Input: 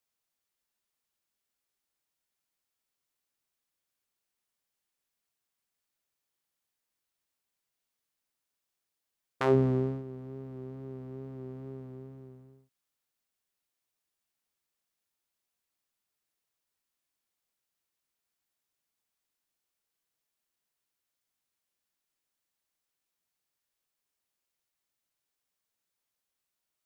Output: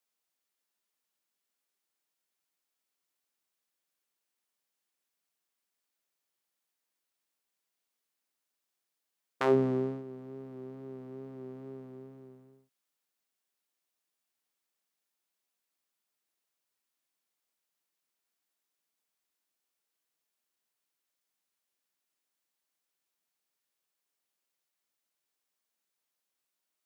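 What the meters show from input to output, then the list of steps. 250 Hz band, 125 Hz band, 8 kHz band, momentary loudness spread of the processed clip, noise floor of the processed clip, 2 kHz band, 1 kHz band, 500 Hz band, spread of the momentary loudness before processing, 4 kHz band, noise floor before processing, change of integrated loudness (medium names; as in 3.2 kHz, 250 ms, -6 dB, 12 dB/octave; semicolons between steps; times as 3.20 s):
-1.0 dB, -7.5 dB, no reading, 20 LU, under -85 dBFS, 0.0 dB, 0.0 dB, 0.0 dB, 21 LU, 0.0 dB, under -85 dBFS, -0.5 dB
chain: high-pass 190 Hz 12 dB/octave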